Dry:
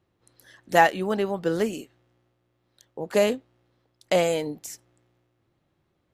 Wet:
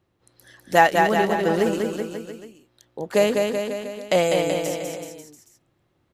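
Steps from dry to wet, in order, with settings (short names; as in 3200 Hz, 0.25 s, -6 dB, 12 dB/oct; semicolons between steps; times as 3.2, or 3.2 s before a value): bouncing-ball echo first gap 0.2 s, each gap 0.9×, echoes 5; gain +2 dB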